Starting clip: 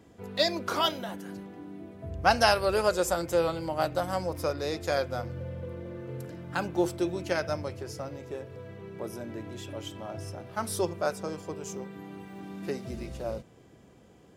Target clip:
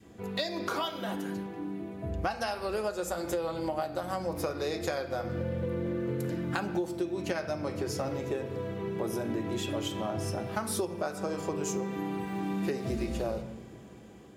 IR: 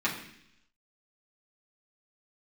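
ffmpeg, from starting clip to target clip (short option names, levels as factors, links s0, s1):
-filter_complex "[0:a]adynamicequalizer=threshold=0.0178:dfrequency=610:dqfactor=0.75:tfrequency=610:tqfactor=0.75:attack=5:release=100:ratio=0.375:range=1.5:mode=boostabove:tftype=bell,dynaudnorm=f=950:g=5:m=1.78,asplit=2[s0][s1];[1:a]atrim=start_sample=2205,highshelf=f=4400:g=7.5[s2];[s1][s2]afir=irnorm=-1:irlink=0,volume=0.224[s3];[s0][s3]amix=inputs=2:normalize=0,acompressor=threshold=0.0355:ratio=20,lowshelf=f=240:g=4"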